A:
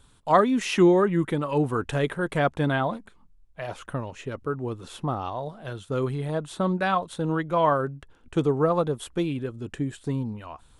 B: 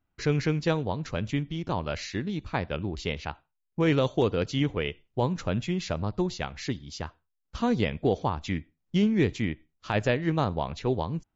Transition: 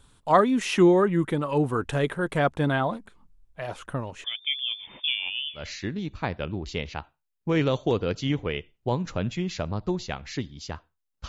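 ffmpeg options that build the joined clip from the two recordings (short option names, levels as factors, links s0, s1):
-filter_complex "[0:a]asettb=1/sr,asplit=3[s0][s1][s2];[s0]atrim=end=4.244[s3];[s1]atrim=start=4.24:end=5.69,asetpts=PTS-STARTPTS,afade=t=in:d=0.004:c=qsin,afade=t=out:st=1.446:d=0.004:c=qsin,lowpass=f=3100:t=q:w=0.5098,lowpass=f=3100:t=q:w=0.6013,lowpass=f=3100:t=q:w=0.9,lowpass=f=3100:t=q:w=2.563,afreqshift=-3600[s4];[s2]atrim=start=5.686[s5];[s3][s4]acrossfade=d=0.004:c1=hsin:c2=qsin[s6];[s6][s5]acrossfade=d=0.004:c1=qsin:c2=hsin,apad=whole_dur=11.28,atrim=end=11.28,atrim=end=5.69,asetpts=PTS-STARTPTS[s7];[1:a]atrim=start=1.84:end=7.59,asetpts=PTS-STARTPTS[s8];[s7][s8]acrossfade=d=0.16:c1=tri:c2=tri"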